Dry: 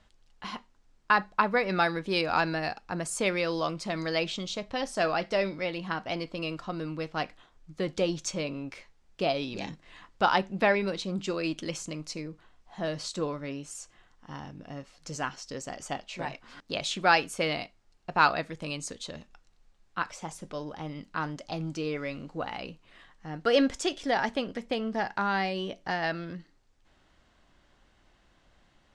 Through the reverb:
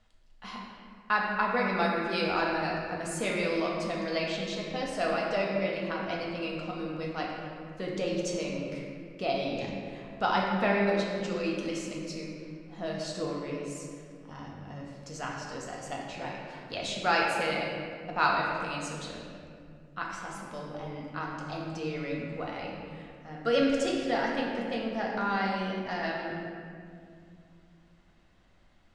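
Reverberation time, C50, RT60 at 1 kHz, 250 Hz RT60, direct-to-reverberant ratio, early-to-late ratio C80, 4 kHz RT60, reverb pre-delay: 2.3 s, 0.0 dB, 2.0 s, 3.4 s, −3.0 dB, 2.0 dB, 1.4 s, 4 ms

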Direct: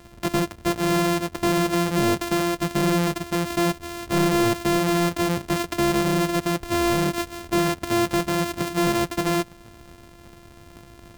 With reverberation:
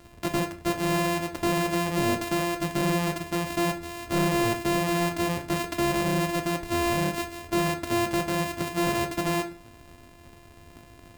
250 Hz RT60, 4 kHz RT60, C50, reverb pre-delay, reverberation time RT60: 0.45 s, 0.35 s, 13.5 dB, 3 ms, 0.45 s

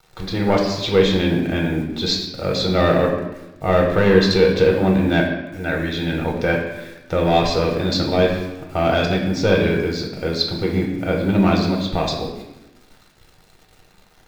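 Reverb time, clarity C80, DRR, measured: 0.95 s, 7.0 dB, 0.0 dB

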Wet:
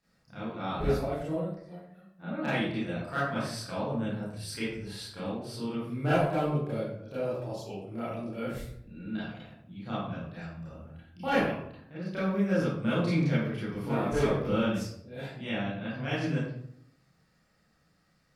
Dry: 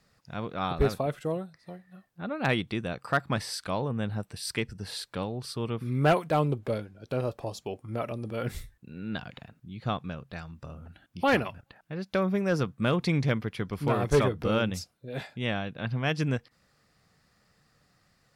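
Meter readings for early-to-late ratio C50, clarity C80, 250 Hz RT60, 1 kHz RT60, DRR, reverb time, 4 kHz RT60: 0.0 dB, 4.5 dB, 0.90 s, 0.65 s, −11.0 dB, 0.70 s, 0.45 s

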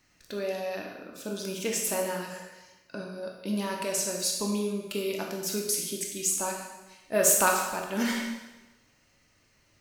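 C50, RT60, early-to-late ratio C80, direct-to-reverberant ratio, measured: 3.0 dB, 1.1 s, 5.5 dB, 0.5 dB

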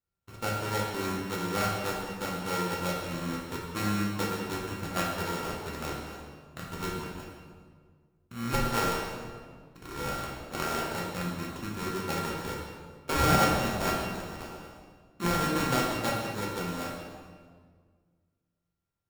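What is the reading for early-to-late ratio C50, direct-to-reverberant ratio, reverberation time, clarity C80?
1.0 dB, −4.0 dB, 1.7 s, 3.0 dB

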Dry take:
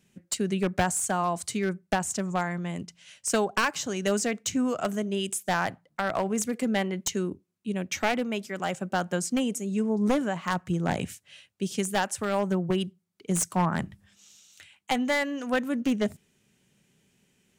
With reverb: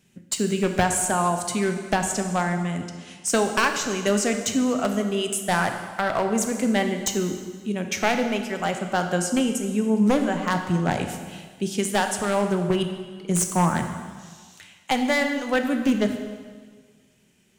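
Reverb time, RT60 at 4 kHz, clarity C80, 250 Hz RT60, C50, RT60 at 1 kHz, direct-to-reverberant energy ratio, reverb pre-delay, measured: 1.6 s, 1.5 s, 8.5 dB, 1.5 s, 7.0 dB, 1.6 s, 5.5 dB, 8 ms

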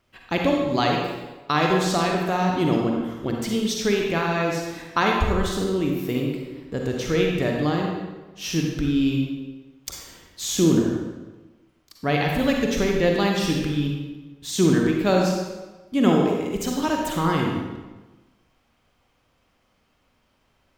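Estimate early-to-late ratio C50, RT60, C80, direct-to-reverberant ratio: 0.5 dB, 1.2 s, 3.0 dB, 0.0 dB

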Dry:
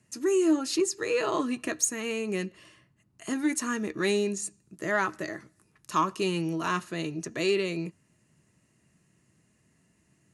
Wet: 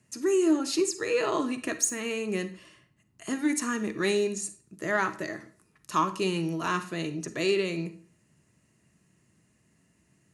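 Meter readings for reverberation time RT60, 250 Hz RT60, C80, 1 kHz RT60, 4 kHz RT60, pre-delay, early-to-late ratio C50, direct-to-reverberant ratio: 0.45 s, 0.40 s, 18.0 dB, 0.45 s, 0.35 s, 38 ms, 14.0 dB, 11.5 dB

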